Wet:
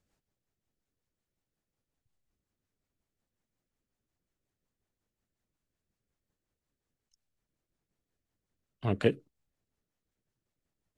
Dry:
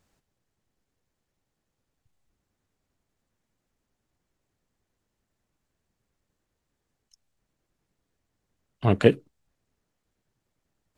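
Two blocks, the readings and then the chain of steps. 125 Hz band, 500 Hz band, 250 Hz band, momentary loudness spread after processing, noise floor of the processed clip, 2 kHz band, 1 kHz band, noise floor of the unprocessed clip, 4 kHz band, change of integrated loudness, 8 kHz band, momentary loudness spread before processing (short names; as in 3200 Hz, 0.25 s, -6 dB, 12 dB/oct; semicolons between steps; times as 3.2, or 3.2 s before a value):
-8.5 dB, -8.5 dB, -8.5 dB, 11 LU, under -85 dBFS, -7.5 dB, -9.5 dB, -81 dBFS, -7.0 dB, -8.0 dB, n/a, 11 LU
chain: rotary speaker horn 5.5 Hz; gain -6 dB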